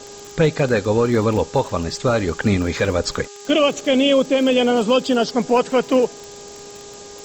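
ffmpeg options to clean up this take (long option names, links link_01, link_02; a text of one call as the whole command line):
ffmpeg -i in.wav -af "adeclick=threshold=4,bandreject=frequency=406.6:width_type=h:width=4,bandreject=frequency=813.2:width_type=h:width=4,bandreject=frequency=1219.8:width_type=h:width=4,bandreject=frequency=1626.4:width_type=h:width=4,afftdn=noise_reduction=26:noise_floor=-38" out.wav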